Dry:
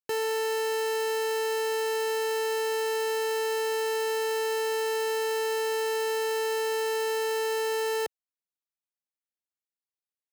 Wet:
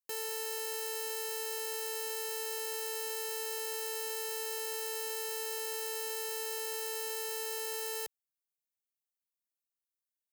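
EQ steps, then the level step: pre-emphasis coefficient 0.8; 0.0 dB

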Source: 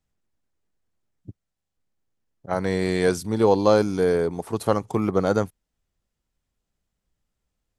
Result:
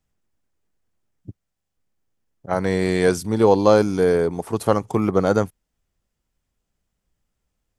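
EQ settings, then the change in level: bell 4000 Hz -3 dB 0.31 oct; +3.0 dB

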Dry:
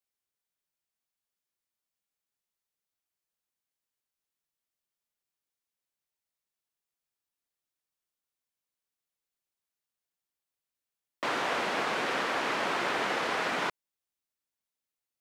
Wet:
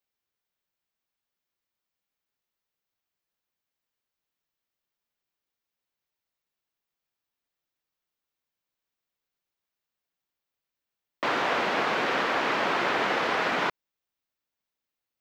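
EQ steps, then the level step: bell 9600 Hz -13 dB 0.94 oct; +4.5 dB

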